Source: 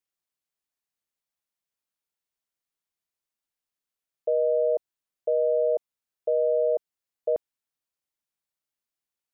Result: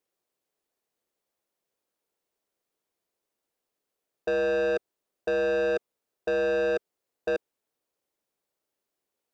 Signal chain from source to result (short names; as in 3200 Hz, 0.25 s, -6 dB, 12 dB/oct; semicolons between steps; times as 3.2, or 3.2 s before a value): bell 440 Hz +14 dB 1.8 oct; in parallel at -1.5 dB: negative-ratio compressor -16 dBFS, ratio -0.5; on the sum: soft clip -16 dBFS, distortion -8 dB; gain -7.5 dB